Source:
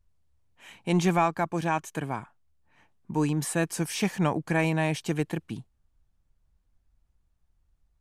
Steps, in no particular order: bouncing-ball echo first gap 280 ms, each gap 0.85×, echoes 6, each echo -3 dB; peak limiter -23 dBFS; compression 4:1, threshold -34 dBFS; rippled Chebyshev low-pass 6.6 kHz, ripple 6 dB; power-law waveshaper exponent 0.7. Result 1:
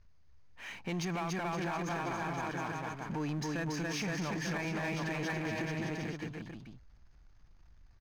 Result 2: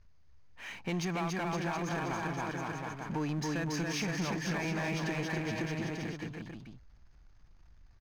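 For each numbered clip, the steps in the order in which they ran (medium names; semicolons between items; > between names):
bouncing-ball echo > peak limiter > rippled Chebyshev low-pass > compression > power-law waveshaper; rippled Chebyshev low-pass > peak limiter > bouncing-ball echo > compression > power-law waveshaper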